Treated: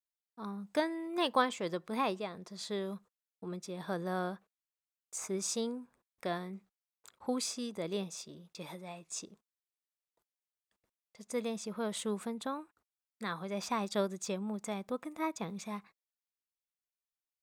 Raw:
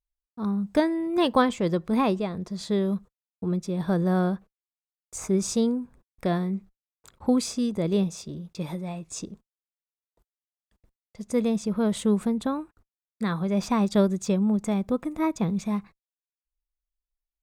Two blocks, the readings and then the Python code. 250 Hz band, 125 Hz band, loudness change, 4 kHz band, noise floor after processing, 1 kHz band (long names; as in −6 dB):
−14.5 dB, −16.5 dB, −11.0 dB, −4.0 dB, below −85 dBFS, −6.5 dB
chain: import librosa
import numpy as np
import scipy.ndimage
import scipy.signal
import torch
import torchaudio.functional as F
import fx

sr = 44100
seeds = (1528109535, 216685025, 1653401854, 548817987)

y = fx.highpass(x, sr, hz=760.0, slope=6)
y = F.gain(torch.from_numpy(y), -4.0).numpy()